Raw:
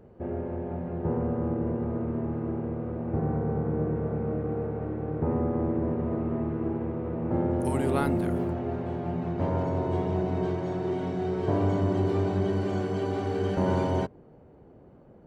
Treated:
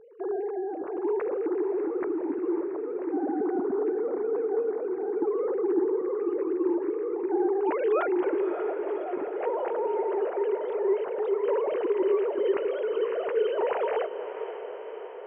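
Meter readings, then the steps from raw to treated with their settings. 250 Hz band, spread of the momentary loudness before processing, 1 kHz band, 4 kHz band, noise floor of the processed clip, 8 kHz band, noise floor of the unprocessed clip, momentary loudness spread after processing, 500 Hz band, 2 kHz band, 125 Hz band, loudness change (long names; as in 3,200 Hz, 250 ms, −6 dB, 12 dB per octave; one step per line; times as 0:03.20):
−2.5 dB, 6 LU, +0.5 dB, can't be measured, −38 dBFS, below −25 dB, −53 dBFS, 7 LU, +5.0 dB, +2.0 dB, below −35 dB, +1.0 dB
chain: three sine waves on the formant tracks
feedback delay with all-pass diffusion 575 ms, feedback 65%, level −10 dB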